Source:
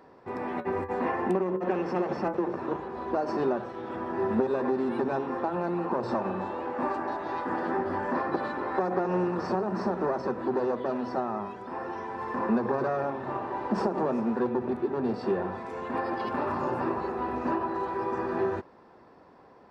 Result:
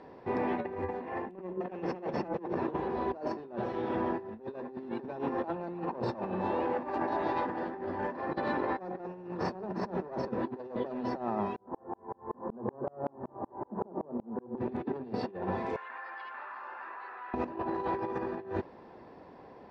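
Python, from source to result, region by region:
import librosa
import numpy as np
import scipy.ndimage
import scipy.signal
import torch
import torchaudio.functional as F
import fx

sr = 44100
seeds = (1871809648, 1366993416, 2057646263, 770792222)

y = fx.chain(x, sr, fx.lowpass(hz=1200.0, slope=24),
    fx.tremolo_decay(direction='swelling', hz=5.3, depth_db=39), at=(11.56, 14.58))
y = fx.chain(y, sr, fx.ladder_bandpass(hz=1700.0, resonance_pct=45),
    fx.env_flatten(amount_pct=70), at=(15.76, 17.34))
y = scipy.signal.sosfilt(scipy.signal.butter(2, 4400.0, 'lowpass', fs=sr, output='sos'), y)
y = fx.peak_eq(y, sr, hz=1300.0, db=-7.0, octaves=0.58)
y = fx.over_compress(y, sr, threshold_db=-34.0, ratio=-0.5)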